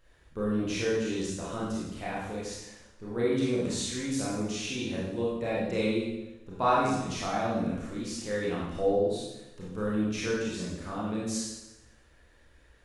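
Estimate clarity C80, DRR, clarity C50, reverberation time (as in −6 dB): 2.5 dB, −7.0 dB, −1.5 dB, 1.0 s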